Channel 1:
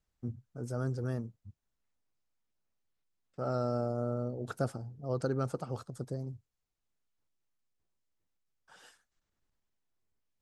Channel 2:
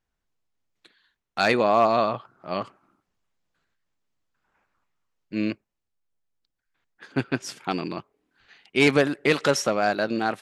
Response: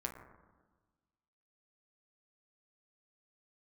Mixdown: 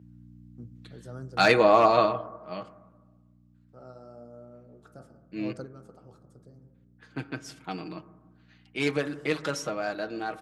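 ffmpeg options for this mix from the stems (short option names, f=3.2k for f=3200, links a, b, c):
-filter_complex "[0:a]adelay=350,volume=-8.5dB,asplit=2[a][b];[b]volume=-9dB[c];[1:a]aecho=1:1:6.4:0.55,aeval=exprs='val(0)+0.00562*(sin(2*PI*60*n/s)+sin(2*PI*2*60*n/s)/2+sin(2*PI*3*60*n/s)/3+sin(2*PI*4*60*n/s)/4+sin(2*PI*5*60*n/s)/5)':c=same,volume=-3dB,afade=t=out:st=2:d=0.21:silence=0.316228,asplit=3[d][e][f];[e]volume=-5.5dB[g];[f]apad=whole_len=474886[h];[a][h]sidechaingate=range=-16dB:threshold=-52dB:ratio=16:detection=peak[i];[2:a]atrim=start_sample=2205[j];[c][g]amix=inputs=2:normalize=0[k];[k][j]afir=irnorm=-1:irlink=0[l];[i][d][l]amix=inputs=3:normalize=0,highpass=f=93:w=0.5412,highpass=f=93:w=1.3066"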